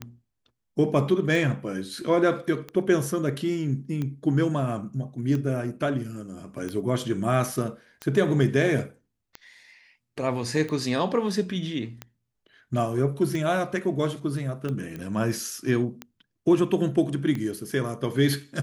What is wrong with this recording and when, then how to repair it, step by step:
tick 45 rpm -19 dBFS
14.96 s: pop -23 dBFS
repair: de-click

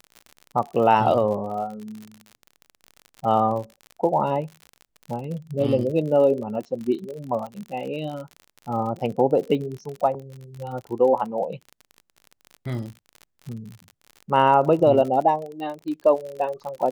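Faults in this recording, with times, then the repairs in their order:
crackle 49 per s -31 dBFS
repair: de-click

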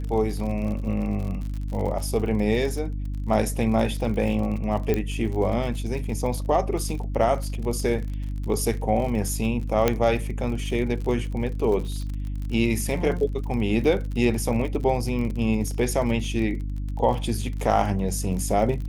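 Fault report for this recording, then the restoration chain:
crackle 47 per s -31 dBFS
hum 50 Hz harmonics 6 -29 dBFS
4.94 s: pop -12 dBFS
9.88 s: pop -6 dBFS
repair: de-click; de-hum 50 Hz, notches 6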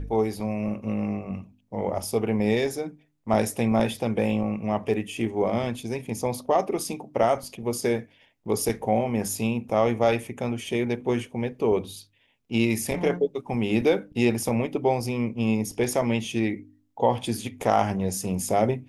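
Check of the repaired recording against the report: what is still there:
4.94 s: pop

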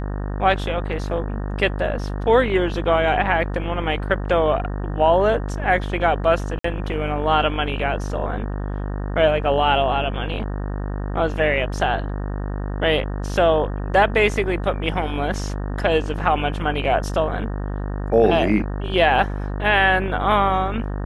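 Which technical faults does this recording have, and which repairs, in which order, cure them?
buzz 50 Hz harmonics 37 -26 dBFS
6.59–6.64 s: dropout 54 ms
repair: de-hum 50 Hz, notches 37; interpolate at 6.59 s, 54 ms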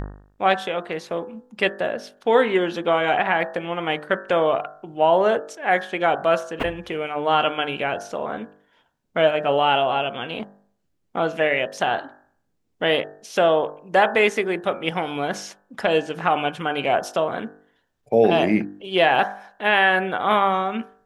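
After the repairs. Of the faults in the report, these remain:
nothing left

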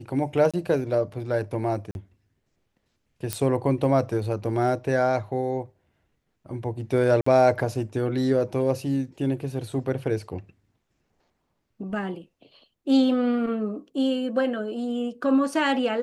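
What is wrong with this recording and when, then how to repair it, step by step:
0.51–0.54 s: dropout 26 ms
1.91–1.95 s: dropout 41 ms
3.33 s: pop -9 dBFS
7.21–7.26 s: dropout 54 ms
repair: de-click; interpolate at 0.51 s, 26 ms; interpolate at 1.91 s, 41 ms; interpolate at 7.21 s, 54 ms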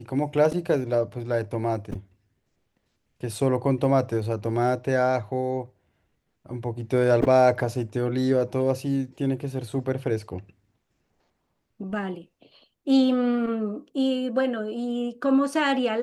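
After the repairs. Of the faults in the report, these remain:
nothing left

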